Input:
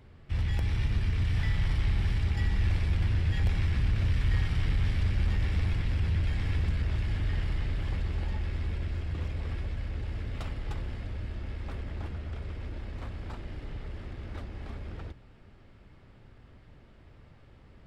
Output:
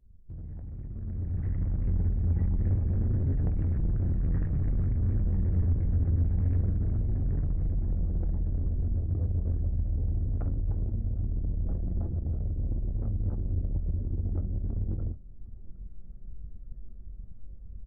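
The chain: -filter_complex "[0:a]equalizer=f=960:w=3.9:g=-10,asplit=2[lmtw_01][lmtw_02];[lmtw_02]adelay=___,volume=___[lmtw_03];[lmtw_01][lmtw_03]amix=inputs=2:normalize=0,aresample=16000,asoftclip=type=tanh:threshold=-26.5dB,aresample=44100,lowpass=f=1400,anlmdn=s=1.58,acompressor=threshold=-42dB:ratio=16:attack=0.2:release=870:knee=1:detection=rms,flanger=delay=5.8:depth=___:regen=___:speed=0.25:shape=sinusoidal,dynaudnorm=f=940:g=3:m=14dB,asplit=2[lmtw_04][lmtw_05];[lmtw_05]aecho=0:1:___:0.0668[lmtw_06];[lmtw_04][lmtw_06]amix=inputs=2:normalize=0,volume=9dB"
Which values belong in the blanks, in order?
22, -6.5dB, 6.2, 72, 759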